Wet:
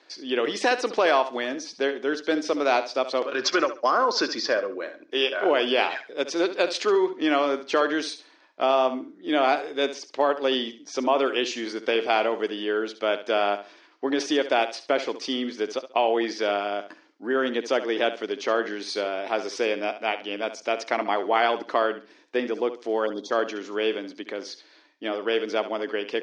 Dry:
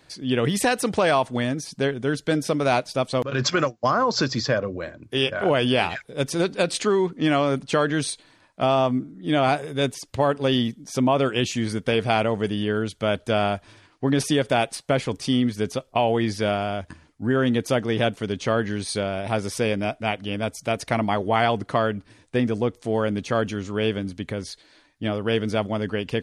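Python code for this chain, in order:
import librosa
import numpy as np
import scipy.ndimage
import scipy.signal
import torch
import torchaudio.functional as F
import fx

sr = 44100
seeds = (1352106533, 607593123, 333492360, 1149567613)

y = scipy.signal.sosfilt(scipy.signal.ellip(3, 1.0, 50, [320.0, 5700.0], 'bandpass', fs=sr, output='sos'), x)
y = fx.spec_box(y, sr, start_s=23.06, length_s=0.25, low_hz=1100.0, high_hz=3200.0, gain_db=-29)
y = fx.room_flutter(y, sr, wall_m=11.8, rt60_s=0.33)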